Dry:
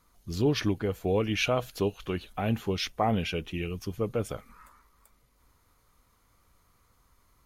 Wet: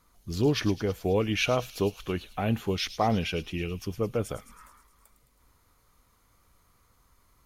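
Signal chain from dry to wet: thin delay 0.107 s, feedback 65%, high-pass 4700 Hz, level -8.5 dB; gain +1 dB

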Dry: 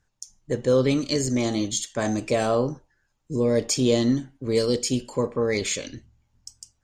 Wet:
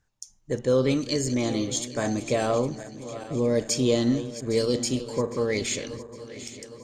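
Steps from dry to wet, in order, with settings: regenerating reverse delay 0.405 s, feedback 71%, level -14 dB; gain -2 dB

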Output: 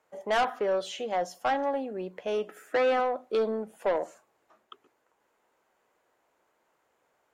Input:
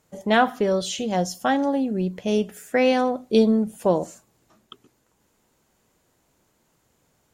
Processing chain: three-band isolator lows -22 dB, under 400 Hz, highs -14 dB, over 2500 Hz; soft clip -20.5 dBFS, distortion -11 dB; 2.47–3 small resonant body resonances 310/1300 Hz, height 12 dB

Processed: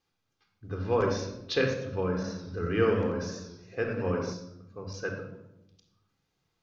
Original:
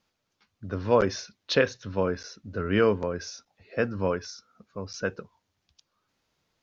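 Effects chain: shoebox room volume 3000 m³, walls furnished, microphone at 3.8 m; 2.09–4.33 warbling echo 90 ms, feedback 52%, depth 113 cents, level -8.5 dB; gain -7 dB

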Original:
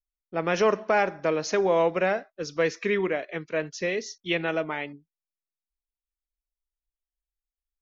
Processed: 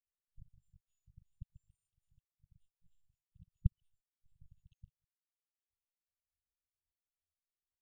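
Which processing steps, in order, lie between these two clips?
pitch shift by moving bins +9.5 st; low-pass opened by the level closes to 2300 Hz, open at -24.5 dBFS; HPF 61 Hz 12 dB/oct; LFO low-pass saw down 0.45 Hz 790–1800 Hz; dynamic EQ 210 Hz, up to +4 dB, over -46 dBFS, Q 1.3; loudest bins only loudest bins 1; LPC vocoder at 8 kHz pitch kept; brick-wall FIR band-stop 160–2600 Hz; gain +1.5 dB

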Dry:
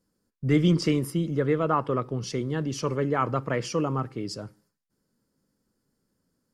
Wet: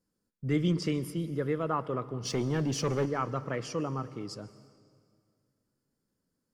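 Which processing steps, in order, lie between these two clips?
2.25–3.06 sample leveller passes 2; on a send: reverb RT60 2.1 s, pre-delay 0.119 s, DRR 16 dB; on the sum: gain -6.5 dB

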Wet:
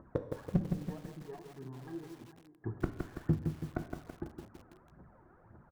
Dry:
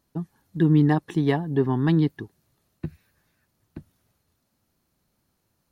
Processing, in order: echo 0.453 s -12.5 dB; flipped gate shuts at -28 dBFS, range -39 dB; phaser 1.8 Hz, delay 3.1 ms, feedback 67%; steep low-pass 1600 Hz 36 dB/oct; de-hum 97.62 Hz, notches 37; dynamic EQ 210 Hz, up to -6 dB, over -57 dBFS, Q 3.2; treble ducked by the level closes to 670 Hz, closed at -42 dBFS; low shelf 160 Hz -6 dB; one-sided clip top -38.5 dBFS, bottom -31.5 dBFS; on a send at -8 dB: reverb, pre-delay 3 ms; on the sum: lo-fi delay 0.165 s, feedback 55%, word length 11-bit, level -5 dB; gain +13.5 dB

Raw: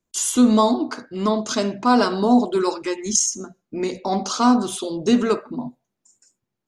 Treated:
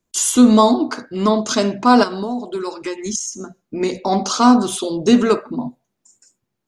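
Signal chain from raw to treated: 2.03–3.81 compressor 8:1, threshold -26 dBFS, peak gain reduction 14.5 dB; gain +4.5 dB

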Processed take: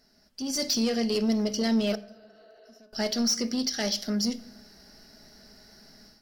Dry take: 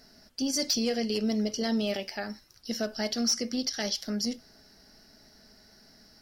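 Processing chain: 1.94–2.76 spectral repair 280–4700 Hz after; soft clip -23.5 dBFS, distortion -18 dB; 1.95–2.93 compressor 10:1, threshold -57 dBFS, peak gain reduction 27.5 dB; on a send at -13.5 dB: reverb RT60 0.75 s, pre-delay 5 ms; on the sum: AGC gain up to 11.5 dB; gain -8 dB

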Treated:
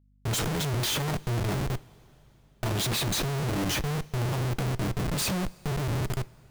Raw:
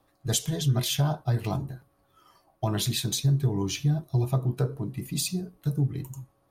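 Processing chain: Schmitt trigger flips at -36.5 dBFS; two-slope reverb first 0.22 s, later 3.7 s, from -19 dB, DRR 15 dB; hum 50 Hz, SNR 33 dB

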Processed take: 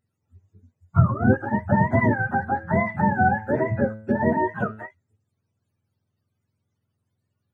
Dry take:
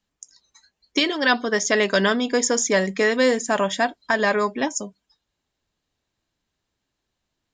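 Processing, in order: spectrum mirrored in octaves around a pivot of 620 Hz; 2.35–4.86 de-hum 108.7 Hz, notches 39

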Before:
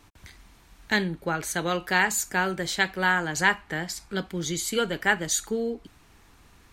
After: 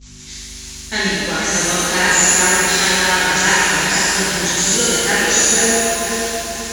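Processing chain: switching spikes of -21.5 dBFS; downsampling 16000 Hz; split-band echo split 3000 Hz, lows 0.487 s, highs 0.115 s, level -5 dB; expander -29 dBFS; hum 50 Hz, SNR 16 dB; high shelf 3700 Hz +7.5 dB; shimmer reverb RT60 2.1 s, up +7 st, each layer -8 dB, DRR -10.5 dB; gain -4 dB

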